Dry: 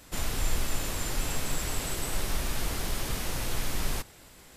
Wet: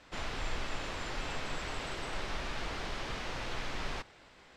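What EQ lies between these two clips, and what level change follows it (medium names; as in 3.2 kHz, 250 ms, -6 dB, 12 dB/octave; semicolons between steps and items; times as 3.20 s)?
distance through air 150 m; bass shelf 350 Hz -11 dB; treble shelf 5.7 kHz -5 dB; +1.0 dB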